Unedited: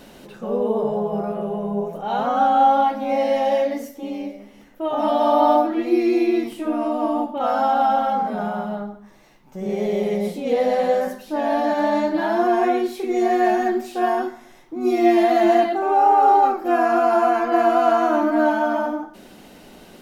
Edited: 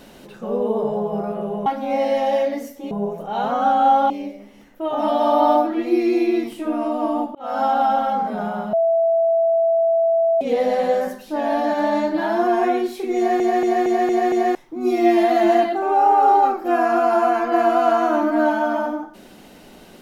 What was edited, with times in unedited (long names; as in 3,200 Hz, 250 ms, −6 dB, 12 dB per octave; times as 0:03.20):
0:01.66–0:02.85: move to 0:04.10
0:07.35–0:07.63: fade in
0:08.73–0:10.41: beep over 663 Hz −14 dBFS
0:13.17: stutter in place 0.23 s, 6 plays